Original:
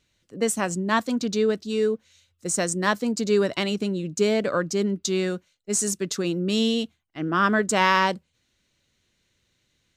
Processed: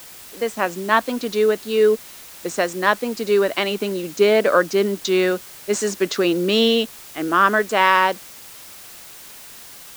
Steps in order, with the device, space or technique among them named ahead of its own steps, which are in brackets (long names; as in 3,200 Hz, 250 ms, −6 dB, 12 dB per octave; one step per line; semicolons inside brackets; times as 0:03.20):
dictaphone (band-pass filter 360–3,300 Hz; automatic gain control gain up to 12.5 dB; tape wow and flutter 23 cents; white noise bed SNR 20 dB)
level −1 dB